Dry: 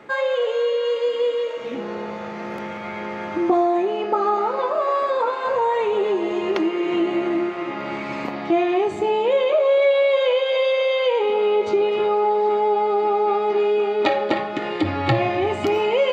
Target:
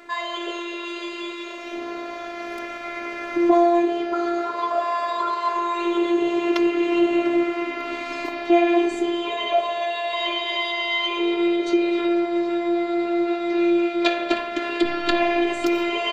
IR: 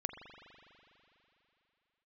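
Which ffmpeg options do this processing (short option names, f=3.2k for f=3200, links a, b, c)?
-filter_complex "[0:a]asplit=2[a][b];[1:a]atrim=start_sample=2205,afade=t=out:st=0.38:d=0.01,atrim=end_sample=17199,highshelf=f=2k:g=11[c];[b][c]afir=irnorm=-1:irlink=0,volume=0.5dB[d];[a][d]amix=inputs=2:normalize=0,afftfilt=real='hypot(re,im)*cos(PI*b)':imag='0':win_size=512:overlap=0.75,asplit=2[e][f];[f]aecho=0:1:695:0.0841[g];[e][g]amix=inputs=2:normalize=0,volume=-3.5dB"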